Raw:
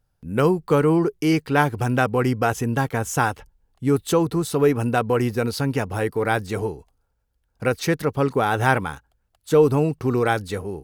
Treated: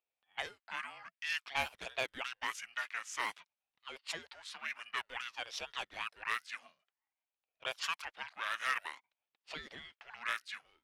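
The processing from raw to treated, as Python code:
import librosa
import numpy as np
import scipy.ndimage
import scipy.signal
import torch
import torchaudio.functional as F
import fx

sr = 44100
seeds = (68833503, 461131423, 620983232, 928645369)

y = fx.ladder_highpass(x, sr, hz=1600.0, resonance_pct=35)
y = fx.high_shelf(y, sr, hz=4700.0, db=-6.0)
y = fx.env_lowpass(y, sr, base_hz=2400.0, full_db=-32.0)
y = 10.0 ** (-23.5 / 20.0) * np.tanh(y / 10.0 ** (-23.5 / 20.0))
y = fx.ring_lfo(y, sr, carrier_hz=560.0, swing_pct=65, hz=0.53)
y = F.gain(torch.from_numpy(y), 3.5).numpy()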